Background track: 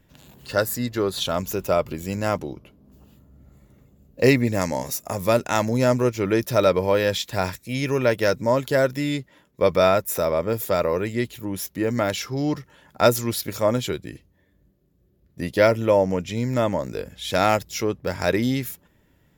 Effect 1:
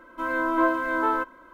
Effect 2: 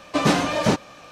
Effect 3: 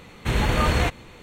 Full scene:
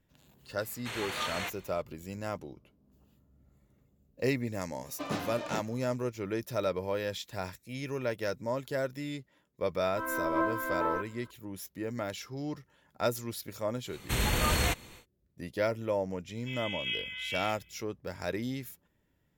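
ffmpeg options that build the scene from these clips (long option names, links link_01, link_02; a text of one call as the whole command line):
ffmpeg -i bed.wav -i cue0.wav -i cue1.wav -i cue2.wav -filter_complex "[3:a]asplit=2[link_01][link_02];[1:a]asplit=2[link_03][link_04];[0:a]volume=-13dB[link_05];[link_01]highpass=frequency=1400:poles=1[link_06];[2:a]equalizer=frequency=10000:width_type=o:width=0.79:gain=-8[link_07];[link_02]aemphasis=mode=production:type=75kf[link_08];[link_04]lowpass=frequency=3100:width_type=q:width=0.5098,lowpass=frequency=3100:width_type=q:width=0.6013,lowpass=frequency=3100:width_type=q:width=0.9,lowpass=frequency=3100:width_type=q:width=2.563,afreqshift=-3600[link_09];[link_06]atrim=end=1.22,asetpts=PTS-STARTPTS,volume=-7.5dB,afade=type=in:duration=0.004:curve=hsin,afade=type=out:start_time=1.216:duration=0.004:curve=hsin,adelay=600[link_10];[link_07]atrim=end=1.11,asetpts=PTS-STARTPTS,volume=-16.5dB,afade=type=in:duration=0.004:curve=hsin,afade=type=out:start_time=1.106:duration=0.004:curve=hsin,adelay=213885S[link_11];[link_03]atrim=end=1.53,asetpts=PTS-STARTPTS,volume=-8dB,afade=type=in:duration=0.004:curve=hsin,afade=type=out:start_time=1.526:duration=0.004:curve=hsin,adelay=431298S[link_12];[link_08]atrim=end=1.22,asetpts=PTS-STARTPTS,volume=-8dB,afade=type=in:duration=0.1,afade=type=out:start_time=1.12:duration=0.1,adelay=13840[link_13];[link_09]atrim=end=1.53,asetpts=PTS-STARTPTS,volume=-13.5dB,afade=type=in:duration=0.004:curve=hsin,afade=type=out:start_time=1.526:duration=0.004:curve=hsin,adelay=16280[link_14];[link_05][link_10][link_11][link_12][link_13][link_14]amix=inputs=6:normalize=0" out.wav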